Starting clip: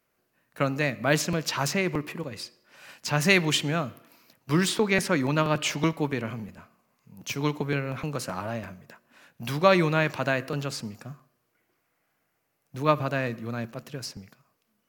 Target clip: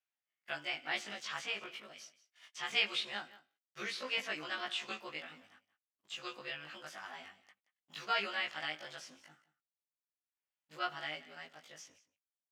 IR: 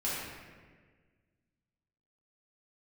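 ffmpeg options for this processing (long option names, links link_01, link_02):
-filter_complex "[0:a]afftfilt=real='re':imag='-im':win_size=2048:overlap=0.75,acrossover=split=3900[link_01][link_02];[link_02]acompressor=threshold=-47dB:ratio=4:attack=1:release=60[link_03];[link_01][link_03]amix=inputs=2:normalize=0,agate=range=-58dB:threshold=-52dB:ratio=16:detection=peak,acompressor=mode=upward:threshold=-54dB:ratio=2.5,asetrate=52479,aresample=44100,bandpass=frequency=3100:width_type=q:width=0.68:csg=0,aecho=1:1:177:0.126,volume=-3dB"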